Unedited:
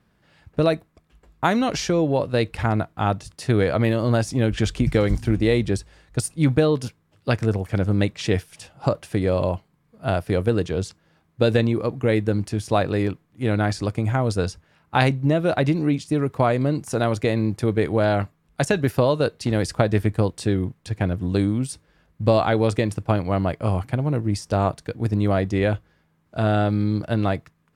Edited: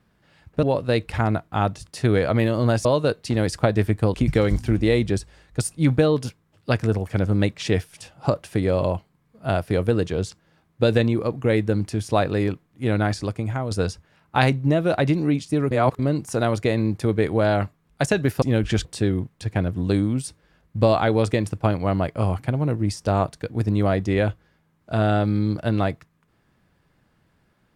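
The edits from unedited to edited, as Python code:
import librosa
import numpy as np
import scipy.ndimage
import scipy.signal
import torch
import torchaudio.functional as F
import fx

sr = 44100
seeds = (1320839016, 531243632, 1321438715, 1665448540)

y = fx.edit(x, sr, fx.cut(start_s=0.63, length_s=1.45),
    fx.swap(start_s=4.3, length_s=0.43, other_s=19.01, other_length_s=1.29),
    fx.fade_out_to(start_s=13.6, length_s=0.7, floor_db=-6.5),
    fx.reverse_span(start_s=16.3, length_s=0.28), tone=tone)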